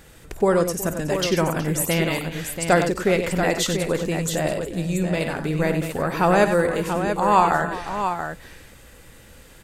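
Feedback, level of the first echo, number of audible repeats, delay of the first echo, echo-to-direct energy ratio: repeats not evenly spaced, −16.0 dB, 4, 52 ms, −4.5 dB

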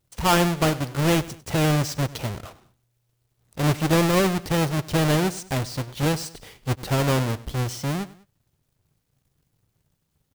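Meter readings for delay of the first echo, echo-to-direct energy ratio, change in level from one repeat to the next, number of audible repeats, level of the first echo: 99 ms, −18.0 dB, −7.5 dB, 2, −18.5 dB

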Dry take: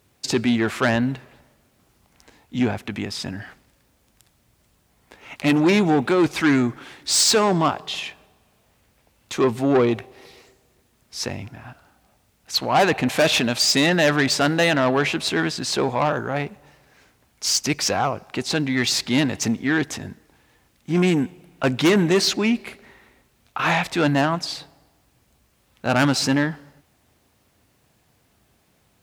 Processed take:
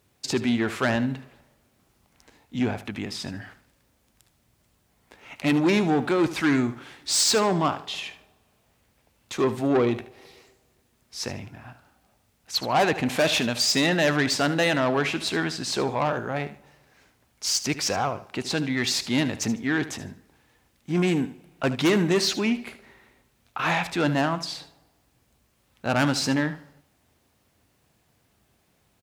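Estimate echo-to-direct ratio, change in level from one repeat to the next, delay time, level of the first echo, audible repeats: −13.5 dB, −12.5 dB, 75 ms, −14.0 dB, 2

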